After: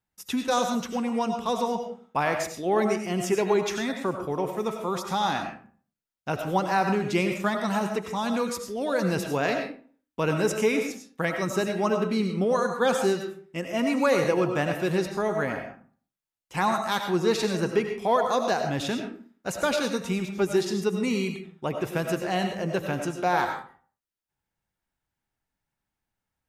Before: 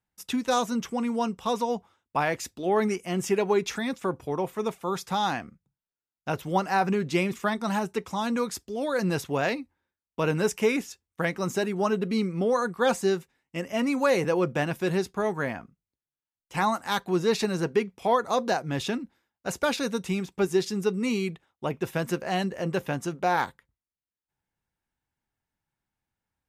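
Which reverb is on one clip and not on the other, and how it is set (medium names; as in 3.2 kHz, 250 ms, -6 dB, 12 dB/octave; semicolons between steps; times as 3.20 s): algorithmic reverb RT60 0.45 s, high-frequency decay 0.65×, pre-delay 55 ms, DRR 4.5 dB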